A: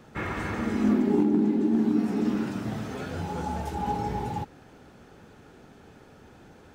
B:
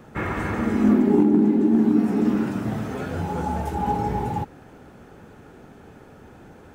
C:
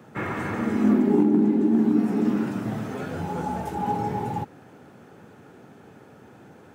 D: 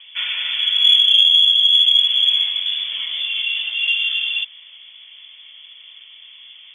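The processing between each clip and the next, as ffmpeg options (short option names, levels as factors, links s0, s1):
-af "equalizer=f=4500:t=o:w=1.6:g=-7,volume=1.88"
-af "highpass=f=100:w=0.5412,highpass=f=100:w=1.3066,volume=0.794"
-af "lowpass=f=3100:t=q:w=0.5098,lowpass=f=3100:t=q:w=0.6013,lowpass=f=3100:t=q:w=0.9,lowpass=f=3100:t=q:w=2.563,afreqshift=-3600,aexciter=amount=2.7:drive=2.9:freq=2400"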